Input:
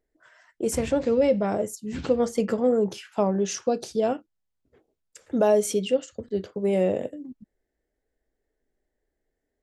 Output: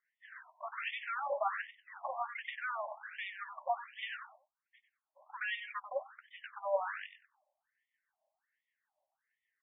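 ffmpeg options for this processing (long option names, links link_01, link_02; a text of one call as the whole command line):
ffmpeg -i in.wav -filter_complex "[0:a]lowshelf=frequency=180:gain=-10.5,acrossover=split=570|1900[link_01][link_02][link_03];[link_01]acompressor=threshold=-23dB:ratio=4[link_04];[link_02]acompressor=threshold=-27dB:ratio=4[link_05];[link_03]acompressor=threshold=-39dB:ratio=4[link_06];[link_04][link_05][link_06]amix=inputs=3:normalize=0,acrossover=split=420[link_07][link_08];[link_07]aeval=exprs='val(0)*(1-0.5/2+0.5/2*cos(2*PI*6.6*n/s))':channel_layout=same[link_09];[link_08]aeval=exprs='val(0)*(1-0.5/2-0.5/2*cos(2*PI*6.6*n/s))':channel_layout=same[link_10];[link_09][link_10]amix=inputs=2:normalize=0,aresample=16000,asoftclip=type=tanh:threshold=-32.5dB,aresample=44100,asplit=2[link_11][link_12];[link_12]adelay=94,lowpass=frequency=3700:poles=1,volume=-8.5dB,asplit=2[link_13][link_14];[link_14]adelay=94,lowpass=frequency=3700:poles=1,volume=0.19,asplit=2[link_15][link_16];[link_16]adelay=94,lowpass=frequency=3700:poles=1,volume=0.19[link_17];[link_11][link_13][link_15][link_17]amix=inputs=4:normalize=0,afftfilt=real='re*between(b*sr/1024,770*pow(2600/770,0.5+0.5*sin(2*PI*1.3*pts/sr))/1.41,770*pow(2600/770,0.5+0.5*sin(2*PI*1.3*pts/sr))*1.41)':imag='im*between(b*sr/1024,770*pow(2600/770,0.5+0.5*sin(2*PI*1.3*pts/sr))/1.41,770*pow(2600/770,0.5+0.5*sin(2*PI*1.3*pts/sr))*1.41)':win_size=1024:overlap=0.75,volume=9dB" out.wav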